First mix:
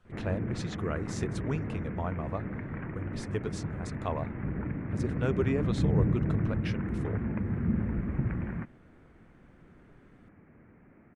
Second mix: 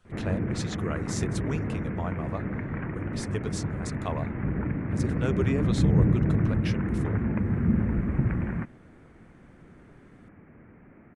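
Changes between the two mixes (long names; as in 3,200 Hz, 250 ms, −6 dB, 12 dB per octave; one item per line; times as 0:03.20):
speech: add high-shelf EQ 4,000 Hz +10.5 dB
background +5.0 dB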